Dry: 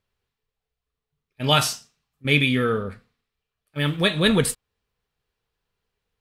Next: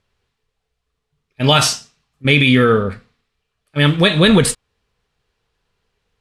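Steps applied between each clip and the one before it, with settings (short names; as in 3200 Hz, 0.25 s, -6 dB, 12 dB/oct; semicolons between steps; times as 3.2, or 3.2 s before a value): LPF 8700 Hz 12 dB/oct; maximiser +11 dB; gain -1 dB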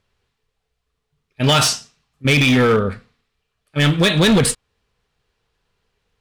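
overloaded stage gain 10 dB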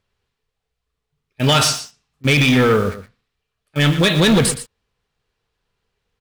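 in parallel at -5 dB: bit-crush 5-bit; on the sum: echo 0.118 s -12.5 dB; gain -4 dB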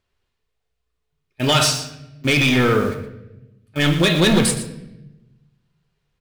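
reverb RT60 0.95 s, pre-delay 3 ms, DRR 6.5 dB; gain -2 dB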